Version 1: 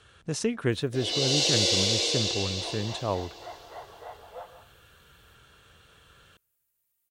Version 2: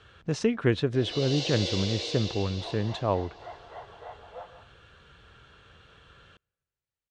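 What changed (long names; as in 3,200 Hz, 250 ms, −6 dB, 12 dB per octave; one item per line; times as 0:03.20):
speech +3.0 dB
first sound −5.0 dB
master: add high-frequency loss of the air 130 metres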